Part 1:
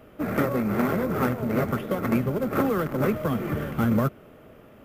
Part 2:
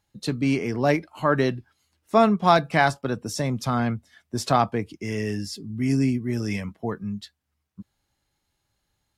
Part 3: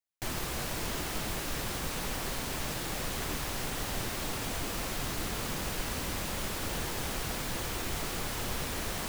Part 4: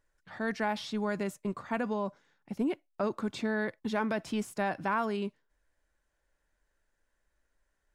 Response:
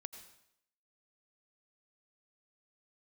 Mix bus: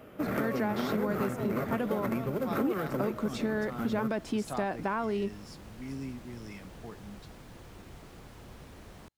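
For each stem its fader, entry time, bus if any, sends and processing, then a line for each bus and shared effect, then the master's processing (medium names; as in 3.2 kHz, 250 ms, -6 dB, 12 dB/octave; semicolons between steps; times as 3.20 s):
2.94 s -1.5 dB -> 3.22 s -11.5 dB, 0.00 s, bus A, send -8 dB, none
-16.5 dB, 0.00 s, bus A, no send, none
-15.5 dB, 0.00 s, bus A, no send, tilt EQ -2.5 dB/octave
0.0 dB, 0.00 s, no bus, no send, peaking EQ 330 Hz +6.5 dB 2 oct
bus A: 0.0 dB, compression, threshold -28 dBFS, peak gain reduction 8.5 dB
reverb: on, RT60 0.75 s, pre-delay 77 ms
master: high-pass 97 Hz 6 dB/octave; compression 2.5:1, threshold -28 dBFS, peak gain reduction 6.5 dB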